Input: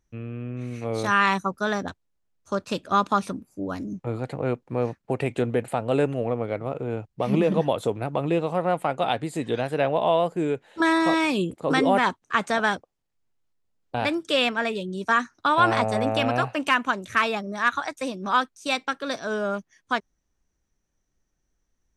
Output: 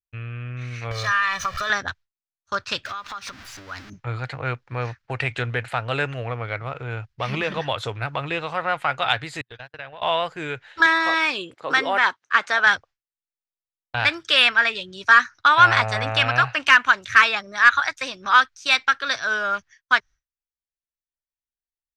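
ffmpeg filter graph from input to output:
-filter_complex "[0:a]asettb=1/sr,asplit=3[s0][s1][s2];[s0]atrim=end=0.914[s3];[s1]atrim=start=0.91:end=1.7,asetpts=PTS-STARTPTS,afade=t=in:d=0.004:c=qsin,afade=t=out:st=0.786:d=0.004:c=qsin,aeval=exprs='val(0)+0.5*0.0251*sgn(val(0))':c=same,aecho=1:1:1.7:0.8,atrim=end_sample=34839,acompressor=threshold=0.0562:ratio=10:attack=3.2:release=140:knee=1:detection=peak[s4];[s2]atrim=start=1.696[s5];[s3][s4]acrossfade=d=0.004:c1=hsin:c2=qsin[s6];[s6][s5]acrossfade=d=0.004:c1=qsin:c2=hsin,asettb=1/sr,asplit=3[s7][s8][s9];[s7]atrim=end=2.854[s10];[s8]atrim=start=2.85:end=3.9,asetpts=PTS-STARTPTS,afade=t=in:d=0.004:c=qsin,afade=t=out:st=1.046:d=0.004:c=qsin,aeval=exprs='val(0)+0.5*0.015*sgn(val(0))':c=same,equalizer=f=130:w=0.33:g=-4,acompressor=threshold=0.0224:ratio=16:attack=3.2:release=140:knee=1:detection=peak[s11];[s9]atrim=start=3.896[s12];[s10][s11]acrossfade=d=0.004:c1=hsin:c2=qsin[s13];[s13][s12]acrossfade=d=0.004:c1=qsin:c2=hsin,asettb=1/sr,asplit=3[s14][s15][s16];[s14]atrim=end=9.414[s17];[s15]atrim=start=9.41:end=10.02,asetpts=PTS-STARTPTS,afade=t=in:d=0.004:c=qsin,afade=t=out:st=0.606:d=0.004:c=qsin,agate=range=0.00282:threshold=0.0501:ratio=16:release=100:detection=peak,highshelf=f=9000:g=-6,acompressor=threshold=0.0178:ratio=5:attack=3.2:release=140:knee=1:detection=peak[s18];[s16]atrim=start=10.016[s19];[s17][s18]acrossfade=d=0.004:c1=hsin:c2=qsin[s20];[s20][s19]acrossfade=d=0.004:c1=qsin:c2=hsin,asettb=1/sr,asplit=3[s21][s22][s23];[s21]atrim=end=10.864[s24];[s22]atrim=start=10.86:end=12.67,asetpts=PTS-STARTPTS,afade=t=in:d=0.004:c=qsin,afade=t=out:st=1.806:d=0.004:c=qsin,highpass=340,tiltshelf=f=650:g=4.5[s25];[s23]atrim=start=12.666[s26];[s24][s25]acrossfade=d=0.004:c1=hsin:c2=qsin[s27];[s27][s26]acrossfade=d=0.004:c1=qsin:c2=hsin,agate=range=0.0224:threshold=0.00708:ratio=3:detection=peak,firequalizer=gain_entry='entry(120,0);entry(180,-16);entry(1500,8);entry(2600,5);entry(5200,5);entry(8900,-11)':delay=0.05:min_phase=1,acontrast=29,volume=0.891"

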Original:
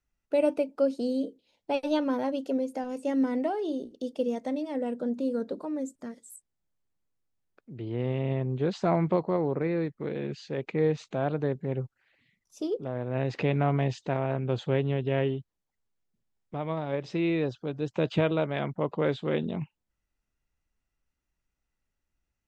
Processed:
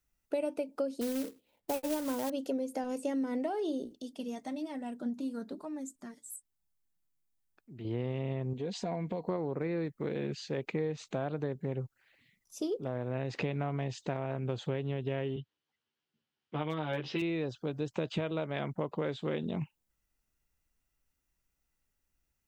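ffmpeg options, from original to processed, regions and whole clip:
-filter_complex "[0:a]asettb=1/sr,asplit=3[s0][s1][s2];[s0]atrim=end=1.014[s3];[s1]atrim=start=1.01:end=2.3,asetpts=PTS-STARTPTS,afade=t=in:d=0.004:c=qsin,afade=t=out:st=1.286:d=0.004:c=qsin,lowpass=2000,acrusher=bits=3:mode=log:mix=0:aa=0.000001[s4];[s2]atrim=start=2.296[s5];[s3][s4]acrossfade=d=0.004:c1=hsin:c2=qsin[s6];[s6][s5]acrossfade=d=0.004:c1=qsin:c2=hsin,asettb=1/sr,asplit=3[s7][s8][s9];[s7]atrim=end=3.934[s10];[s8]atrim=start=3.93:end=7.85,asetpts=PTS-STARTPTS,afade=t=in:d=0.004:c=qsin,afade=t=out:st=3.916:d=0.004:c=qsin,equalizer=f=500:w=4.7:g=-13.5,flanger=delay=1.1:depth=5.8:regen=50:speed=1.1:shape=sinusoidal[s11];[s9]atrim=start=7.846[s12];[s10][s11]acrossfade=d=0.004:c1=hsin:c2=qsin[s13];[s13][s12]acrossfade=d=0.004:c1=qsin:c2=hsin,asettb=1/sr,asplit=3[s14][s15][s16];[s14]atrim=end=8.534[s17];[s15]atrim=start=8.53:end=9.29,asetpts=PTS-STARTPTS,afade=t=in:d=0.004:c=qsin,afade=t=out:st=0.756:d=0.004:c=qsin,equalizer=f=1300:t=o:w=0.42:g=-14,aecho=1:1:4.2:0.45,atrim=end_sample=33516,acompressor=threshold=0.0141:ratio=2:attack=3.2:release=140:knee=1:detection=peak[s18];[s16]atrim=start=9.286[s19];[s17][s18]acrossfade=d=0.004:c1=hsin:c2=qsin[s20];[s20][s19]acrossfade=d=0.004:c1=qsin:c2=hsin,asettb=1/sr,asplit=3[s21][s22][s23];[s21]atrim=end=15.364[s24];[s22]atrim=start=15.36:end=17.22,asetpts=PTS-STARTPTS,afade=t=in:d=0.004:c=qsin,afade=t=out:st=1.856:d=0.004:c=qsin,highpass=f=110:w=0.5412,highpass=f=110:w=1.3066,equalizer=f=180:t=q:w=4:g=-9,equalizer=f=620:t=q:w=4:g=-5,equalizer=f=1500:t=q:w=4:g=4,equalizer=f=3000:t=q:w=4:g=9,lowpass=f=4900:w=0.5412,lowpass=f=4900:w=1.3066,asoftclip=type=hard:threshold=0.0891,asplit=2[s25][s26];[s26]adelay=13,volume=0.75[s27];[s25][s27]amix=inputs=2:normalize=0,atrim=end_sample=82026[s28];[s23]atrim=start=17.216[s29];[s24][s28]acrossfade=d=0.004:c1=hsin:c2=qsin[s30];[s30][s29]acrossfade=d=0.004:c1=qsin:c2=hsin,highshelf=f=7600:g=11.5,acompressor=threshold=0.0316:ratio=6"

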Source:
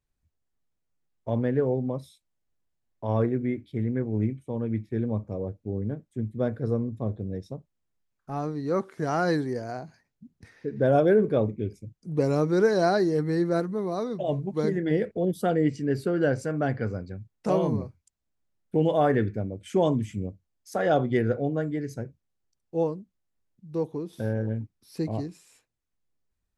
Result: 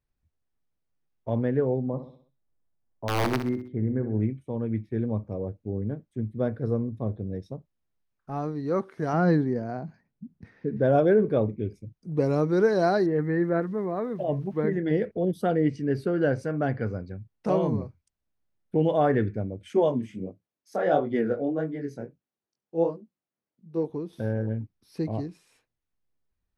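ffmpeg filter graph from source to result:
-filter_complex "[0:a]asettb=1/sr,asplit=3[s0][s1][s2];[s0]atrim=end=1.874[s3];[s1]atrim=start=1.87:end=4.2,asetpts=PTS-STARTPTS,afade=t=in:d=0.004:c=qsin,afade=t=out:st=2.326:d=0.004:c=qsin,lowpass=1500,aeval=exprs='(mod(7.08*val(0)+1,2)-1)/7.08':c=same,aecho=1:1:64|128|192|256|320:0.316|0.139|0.0612|0.0269|0.0119,atrim=end_sample=102753[s4];[s2]atrim=start=4.196[s5];[s3][s4]acrossfade=d=0.004:c1=hsin:c2=qsin[s6];[s6][s5]acrossfade=d=0.004:c1=qsin:c2=hsin,asettb=1/sr,asplit=3[s7][s8][s9];[s7]atrim=end=9.134[s10];[s8]atrim=start=9.13:end=10.77,asetpts=PTS-STARTPTS,afade=t=in:d=0.004:c=qsin,afade=t=out:st=1.636:d=0.004:c=qsin,lowpass=f=2600:p=1,equalizer=f=190:t=o:w=1:g=9[s11];[s9]atrim=start=10.766[s12];[s10][s11]acrossfade=d=0.004:c1=hsin:c2=qsin[s13];[s13][s12]acrossfade=d=0.004:c1=qsin:c2=hsin,asettb=1/sr,asplit=3[s14][s15][s16];[s14]atrim=end=13.064[s17];[s15]atrim=start=13.06:end=14.73,asetpts=PTS-STARTPTS,afade=t=in:d=0.004:c=qsin,afade=t=out:st=1.666:d=0.004:c=qsin,lowpass=f=2700:w=0.5412,lowpass=f=2700:w=1.3066,equalizer=f=1800:w=4.1:g=7,aeval=exprs='val(0)*gte(abs(val(0)),0.00251)':c=same[s18];[s16]atrim=start=14.726[s19];[s17][s18]acrossfade=d=0.004:c1=hsin:c2=qsin[s20];[s20][s19]acrossfade=d=0.004:c1=qsin:c2=hsin,asettb=1/sr,asplit=3[s21][s22][s23];[s21]atrim=end=19.734[s24];[s22]atrim=start=19.73:end=23.9,asetpts=PTS-STARTPTS,afade=t=in:d=0.004:c=qsin,afade=t=out:st=4.166:d=0.004:c=qsin,highpass=180,flanger=delay=18:depth=7.3:speed=1.5,equalizer=f=360:w=0.33:g=3.5[s25];[s23]atrim=start=23.896[s26];[s24][s25]acrossfade=d=0.004:c1=hsin:c2=qsin[s27];[s27][s26]acrossfade=d=0.004:c1=qsin:c2=hsin,highshelf=f=4900:g=-9,bandreject=f=7300:w=6.7"

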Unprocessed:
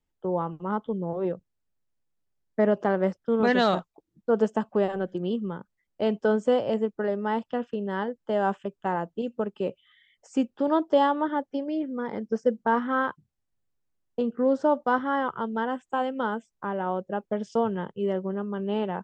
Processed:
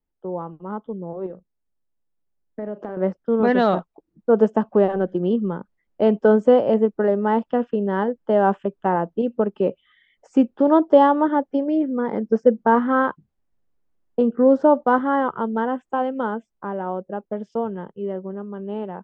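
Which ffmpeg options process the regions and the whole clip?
-filter_complex "[0:a]asettb=1/sr,asplit=3[s0][s1][s2];[s0]atrim=end=1.264[s3];[s1]atrim=start=1.26:end=2.97,asetpts=PTS-STARTPTS,afade=t=in:d=0.004:c=qsin,afade=t=out:st=1.706:d=0.004:c=qsin,acompressor=threshold=0.0355:ratio=6:attack=3.2:release=140:knee=1:detection=peak,asplit=2[s4][s5];[s5]adelay=38,volume=0.224[s6];[s4][s6]amix=inputs=2:normalize=0,atrim=end_sample=75411[s7];[s2]atrim=start=2.966[s8];[s3][s7]acrossfade=d=0.004:c1=hsin:c2=qsin[s9];[s9][s8]acrossfade=d=0.004:c1=qsin:c2=hsin,lowpass=f=1000:p=1,equalizer=f=110:t=o:w=0.67:g=-9.5,dynaudnorm=f=330:g=21:m=3.76"

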